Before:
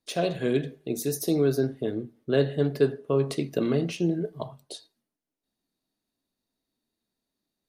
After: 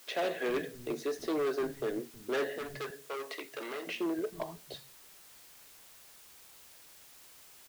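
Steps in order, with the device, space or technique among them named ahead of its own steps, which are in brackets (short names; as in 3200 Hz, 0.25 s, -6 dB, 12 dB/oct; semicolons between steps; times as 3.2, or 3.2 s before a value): drive-through speaker (BPF 350–3100 Hz; bell 1900 Hz +7.5 dB 0.4 oct; hard clip -28 dBFS, distortion -7 dB; white noise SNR 20 dB); 2.58–3.87 HPF 1100 Hz 6 dB/oct; bands offset in time highs, lows 0.32 s, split 190 Hz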